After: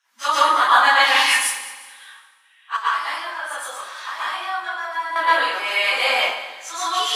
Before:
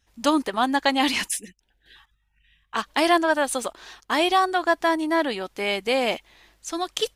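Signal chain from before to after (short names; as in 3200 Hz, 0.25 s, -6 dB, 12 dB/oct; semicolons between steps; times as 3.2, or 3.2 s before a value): phase scrambler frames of 0.1 s; 2.76–5.16 compressor 10:1, threshold -32 dBFS, peak gain reduction 18 dB; resonant high-pass 1200 Hz, resonance Q 2.2; multi-head echo 70 ms, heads second and third, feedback 46%, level -16 dB; reverb RT60 0.65 s, pre-delay 0.11 s, DRR -7 dB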